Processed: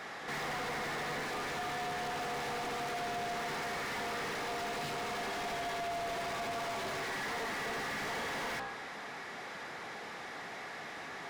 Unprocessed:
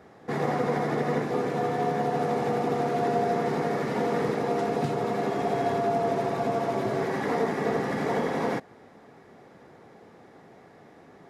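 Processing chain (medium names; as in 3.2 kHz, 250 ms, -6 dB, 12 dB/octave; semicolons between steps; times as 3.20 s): amplifier tone stack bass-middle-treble 5-5-5; de-hum 61.28 Hz, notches 28; overdrive pedal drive 36 dB, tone 3.4 kHz, clips at -31 dBFS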